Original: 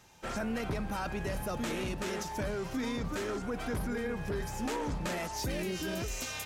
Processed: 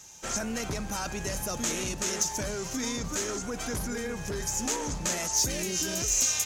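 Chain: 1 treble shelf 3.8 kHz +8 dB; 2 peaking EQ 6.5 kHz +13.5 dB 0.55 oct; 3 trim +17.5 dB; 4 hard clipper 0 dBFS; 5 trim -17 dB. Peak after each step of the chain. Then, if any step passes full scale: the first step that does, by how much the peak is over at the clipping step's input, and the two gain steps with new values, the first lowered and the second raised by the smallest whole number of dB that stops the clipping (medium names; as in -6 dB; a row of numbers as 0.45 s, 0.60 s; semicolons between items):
-20.5 dBFS, -11.5 dBFS, +6.0 dBFS, 0.0 dBFS, -17.0 dBFS; step 3, 6.0 dB; step 3 +11.5 dB, step 5 -11 dB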